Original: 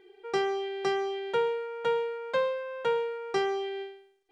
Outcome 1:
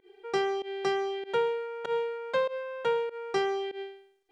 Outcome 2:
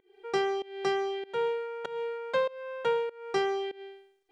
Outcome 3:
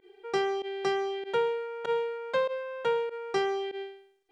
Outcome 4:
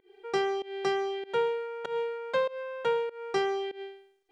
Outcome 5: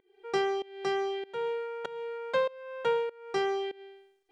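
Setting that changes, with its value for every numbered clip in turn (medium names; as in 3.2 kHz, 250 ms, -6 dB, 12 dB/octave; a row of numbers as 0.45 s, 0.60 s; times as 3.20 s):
volume shaper, release: 105 ms, 308 ms, 63 ms, 182 ms, 483 ms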